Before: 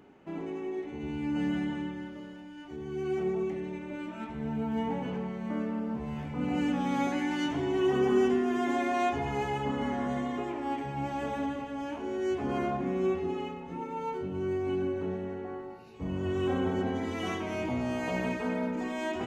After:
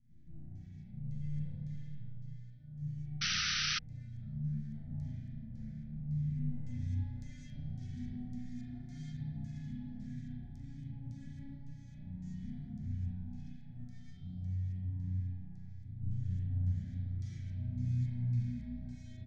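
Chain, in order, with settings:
lower of the sound and its delayed copy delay 8.3 ms
flat-topped bell 2,300 Hz +14.5 dB 1.2 octaves
on a send: backwards echo 175 ms −10.5 dB
on the sum: auto-filter low-pass square 1.8 Hz 910–4,300 Hz
in parallel at −2.5 dB: downward compressor, threshold −35 dBFS, peak gain reduction 15.5 dB
on the sum: high-shelf EQ 3,500 Hz −9.5 dB
double-tracking delay 41 ms −12.5 dB
spring reverb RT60 1.2 s, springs 33 ms, chirp 55 ms, DRR −6 dB
flanger 1.1 Hz, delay 4.5 ms, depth 9.6 ms, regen +84%
elliptic band-stop filter 170–6,400 Hz, stop band 40 dB
sound drawn into the spectrogram noise, 0:03.21–0:03.79, 1,200–6,100 Hz −34 dBFS
automatic gain control gain up to 5 dB
level −5 dB

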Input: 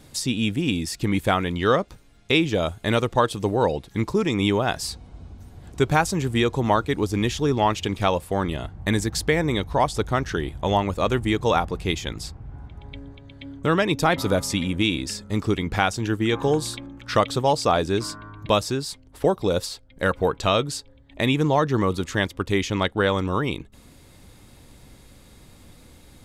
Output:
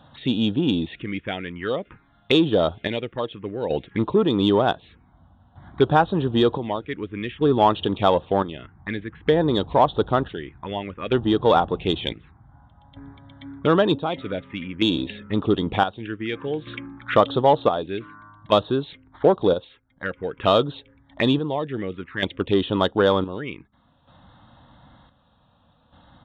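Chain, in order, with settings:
square-wave tremolo 0.54 Hz, depth 65%, duty 55%
phaser swept by the level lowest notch 360 Hz, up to 2,200 Hz, full sweep at −21 dBFS
downsampling to 8,000 Hz
in parallel at −8.5 dB: soft clipping −21 dBFS, distortion −10 dB
on the sum: high-pass filter 270 Hz 6 dB per octave
level +4.5 dB

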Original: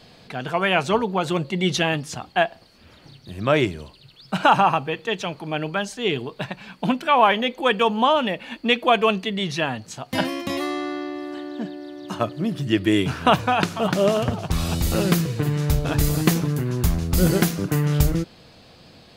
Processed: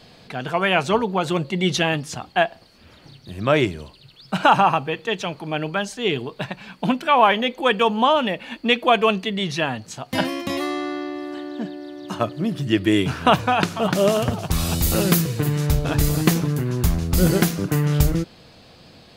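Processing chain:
0:13.95–0:15.67: high-shelf EQ 8,000 Hz +10 dB
level +1 dB

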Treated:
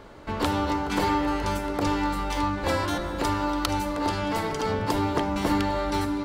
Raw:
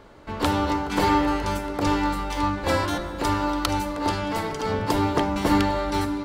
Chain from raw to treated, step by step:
downward compressor 2 to 1, threshold −28 dBFS, peak gain reduction 7.5 dB
level +2.5 dB

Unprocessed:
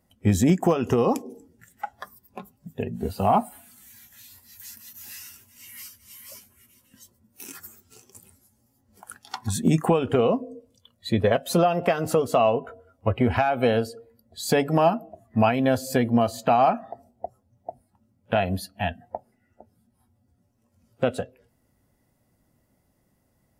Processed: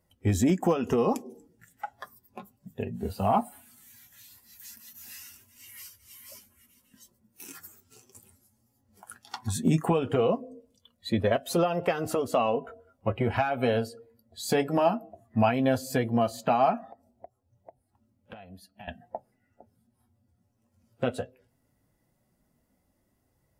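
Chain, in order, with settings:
0:16.86–0:18.88: downward compressor 5 to 1, threshold −42 dBFS, peak gain reduction 21.5 dB
flanger 0.17 Hz, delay 1.9 ms, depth 8 ms, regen −47%

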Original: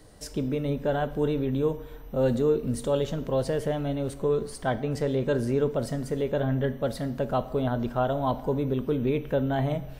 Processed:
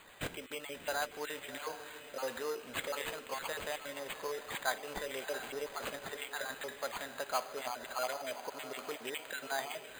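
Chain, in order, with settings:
time-frequency cells dropped at random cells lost 31%
high-pass filter 1,300 Hz 12 dB per octave
in parallel at −0.5 dB: downward compressor, threshold −49 dBFS, peak gain reduction 17.5 dB
on the sum: feedback delay with all-pass diffusion 692 ms, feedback 43%, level −11 dB
bad sample-rate conversion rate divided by 8×, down none, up hold
level +1 dB

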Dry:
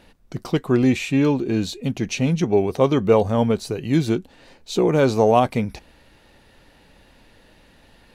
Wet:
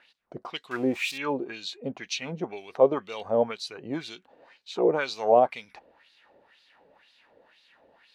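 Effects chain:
0:00.71–0:01.18: spike at every zero crossing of −19 dBFS
auto-filter band-pass sine 2 Hz 500–4,200 Hz
level +2 dB

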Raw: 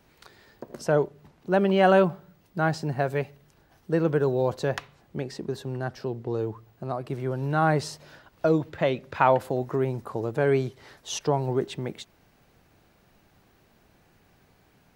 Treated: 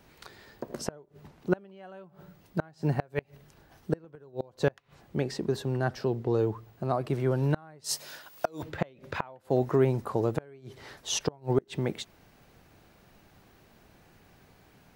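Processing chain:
0:07.84–0:08.63: RIAA equalisation recording
gate with flip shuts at −15 dBFS, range −31 dB
level +2.5 dB

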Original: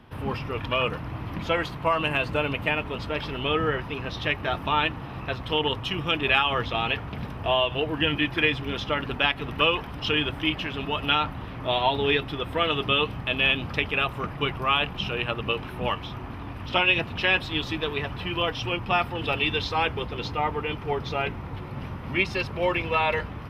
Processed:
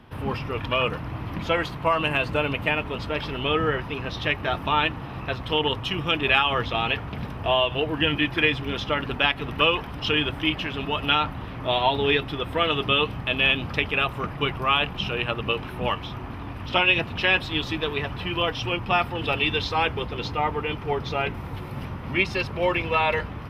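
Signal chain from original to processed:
0:21.34–0:21.85: high-shelf EQ 7,200 Hz +11.5 dB
level +1.5 dB

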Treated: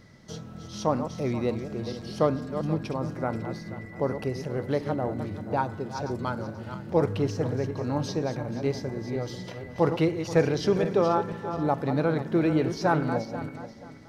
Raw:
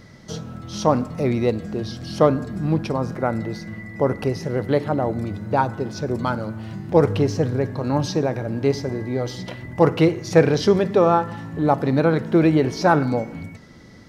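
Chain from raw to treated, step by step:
feedback delay that plays each chunk backwards 241 ms, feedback 51%, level −9 dB
level −7.5 dB

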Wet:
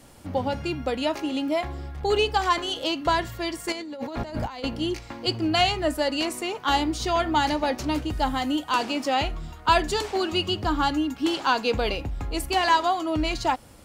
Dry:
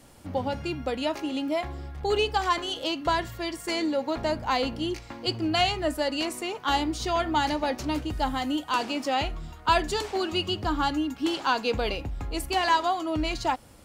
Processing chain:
0:03.72–0:04.64: compressor whose output falls as the input rises −36 dBFS, ratio −1
level +2.5 dB

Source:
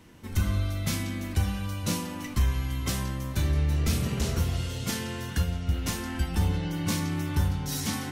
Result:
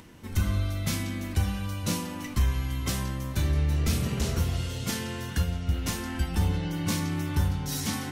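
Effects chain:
upward compression, threshold −46 dBFS

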